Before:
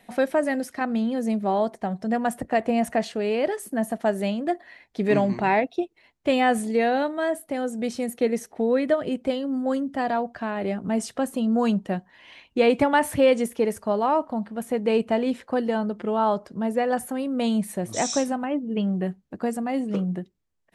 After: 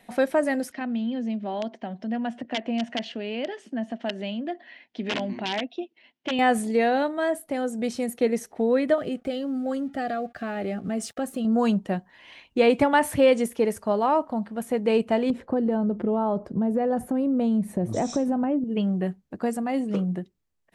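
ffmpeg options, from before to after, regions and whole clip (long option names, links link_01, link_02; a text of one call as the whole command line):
ffmpeg -i in.wav -filter_complex "[0:a]asettb=1/sr,asplit=3[link_01][link_02][link_03];[link_01]atrim=end=0.724[link_04];[link_02]atrim=start=0.72:end=6.39,asetpts=PTS-STARTPTS,afade=type=in:duration=0.004:curve=qsin,afade=type=out:start_time=5.666:duration=0.004:curve=qsin,aeval=exprs='(mod(4.47*val(0)+1,2)-1)/4.47':channel_layout=same,highpass=230,equalizer=frequency=240:width_type=q:width=4:gain=8,equalizer=frequency=440:width_type=q:width=4:gain=-5,equalizer=frequency=840:width_type=q:width=4:gain=-3,equalizer=frequency=1200:width_type=q:width=4:gain=-7,equalizer=frequency=3000:width_type=q:width=4:gain=8,equalizer=frequency=4300:width_type=q:width=4:gain=-3,lowpass=frequency=5200:width=0.5412,lowpass=frequency=5200:width=1.3066,acompressor=threshold=-35dB:ratio=1.5:attack=3.2:release=140:knee=1:detection=peak[link_05];[link_03]atrim=start=6.386[link_06];[link_04][link_05]acrossfade=duration=0.004:curve1=hsin:curve2=qsin[link_07];[link_07][link_06]acrossfade=duration=0.004:curve1=qsin:curve2=hsin,asettb=1/sr,asplit=3[link_08][link_09][link_10];[link_08]atrim=end=8.984[link_11];[link_09]atrim=start=8.98:end=11.45,asetpts=PTS-STARTPTS,afade=type=in:duration=0.004:curve=qsin,afade=type=out:start_time=2.466:duration=0.004:curve=qsin,aeval=exprs='sgn(val(0))*max(abs(val(0))-0.0015,0)':channel_layout=same,acompressor=threshold=-26dB:ratio=2:attack=3.2:release=140:knee=1:detection=peak,asuperstop=centerf=970:order=20:qfactor=4.5[link_12];[link_10]atrim=start=11.446[link_13];[link_11][link_12]acrossfade=duration=0.004:curve1=hsin:curve2=qsin[link_14];[link_14][link_13]acrossfade=duration=0.004:curve1=qsin:curve2=hsin,asettb=1/sr,asplit=3[link_15][link_16][link_17];[link_15]atrim=end=15.304[link_18];[link_16]atrim=start=15.3:end=18.64,asetpts=PTS-STARTPTS,afade=type=in:duration=0.004:curve=qsin,afade=type=out:start_time=3.336:duration=0.004:curve=qsin,tiltshelf=frequency=1100:gain=9.5,acompressor=threshold=-21dB:ratio=4:attack=3.2:release=140:knee=1:detection=peak[link_19];[link_17]atrim=start=18.636[link_20];[link_18][link_19]acrossfade=duration=0.004:curve1=hsin:curve2=qsin[link_21];[link_21][link_20]acrossfade=duration=0.004:curve1=qsin:curve2=hsin" out.wav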